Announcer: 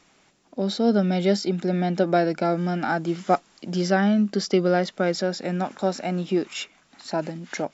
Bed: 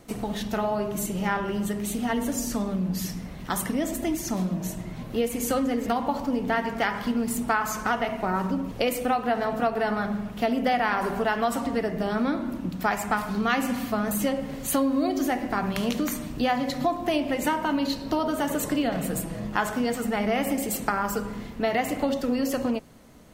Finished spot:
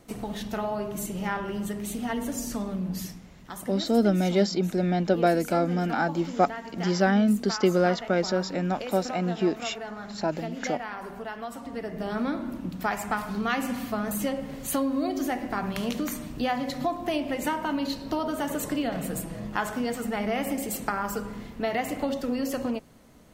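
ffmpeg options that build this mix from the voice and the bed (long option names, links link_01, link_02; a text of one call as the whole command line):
ffmpeg -i stem1.wav -i stem2.wav -filter_complex "[0:a]adelay=3100,volume=-1.5dB[link_01];[1:a]volume=5dB,afade=type=out:start_time=2.99:duration=0.21:silence=0.398107,afade=type=in:start_time=11.62:duration=0.58:silence=0.375837[link_02];[link_01][link_02]amix=inputs=2:normalize=0" out.wav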